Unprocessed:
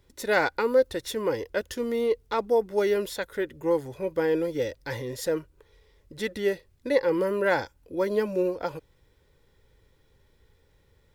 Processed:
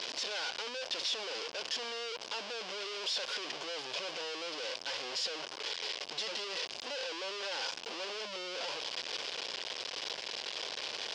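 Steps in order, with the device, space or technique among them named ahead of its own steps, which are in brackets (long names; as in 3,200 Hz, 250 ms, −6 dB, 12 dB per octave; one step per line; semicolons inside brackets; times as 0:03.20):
home computer beeper (sign of each sample alone; loudspeaker in its box 770–5,600 Hz, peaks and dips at 860 Hz −4 dB, 1,300 Hz −8 dB, 1,900 Hz −7 dB, 3,000 Hz +5 dB, 5,000 Hz +7 dB)
level −4.5 dB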